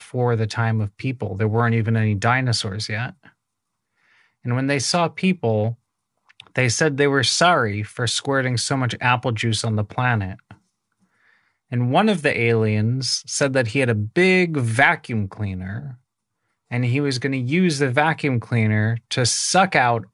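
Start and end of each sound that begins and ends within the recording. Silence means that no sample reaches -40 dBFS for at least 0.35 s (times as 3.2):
4.45–5.74
6.3–10.54
11.72–15.95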